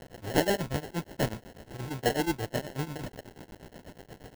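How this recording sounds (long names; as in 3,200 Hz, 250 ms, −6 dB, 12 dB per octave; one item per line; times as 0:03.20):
a quantiser's noise floor 8 bits, dither triangular
tremolo triangle 8.3 Hz, depth 95%
aliases and images of a low sample rate 1,200 Hz, jitter 0%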